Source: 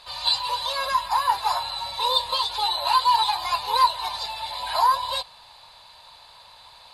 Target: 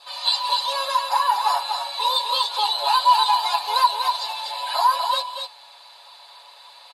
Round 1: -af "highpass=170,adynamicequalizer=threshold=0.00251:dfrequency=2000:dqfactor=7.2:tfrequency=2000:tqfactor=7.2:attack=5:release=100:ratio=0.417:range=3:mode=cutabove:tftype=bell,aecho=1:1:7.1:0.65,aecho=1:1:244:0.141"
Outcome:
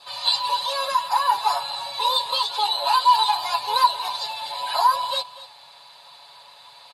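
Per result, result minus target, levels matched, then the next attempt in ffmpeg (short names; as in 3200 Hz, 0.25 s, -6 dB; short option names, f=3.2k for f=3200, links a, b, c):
125 Hz band +15.0 dB; echo-to-direct -11.5 dB
-af "highpass=430,adynamicequalizer=threshold=0.00251:dfrequency=2000:dqfactor=7.2:tfrequency=2000:tqfactor=7.2:attack=5:release=100:ratio=0.417:range=3:mode=cutabove:tftype=bell,aecho=1:1:7.1:0.65,aecho=1:1:244:0.141"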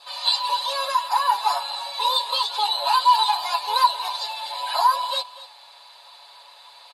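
echo-to-direct -11.5 dB
-af "highpass=430,adynamicequalizer=threshold=0.00251:dfrequency=2000:dqfactor=7.2:tfrequency=2000:tqfactor=7.2:attack=5:release=100:ratio=0.417:range=3:mode=cutabove:tftype=bell,aecho=1:1:7.1:0.65,aecho=1:1:244:0.531"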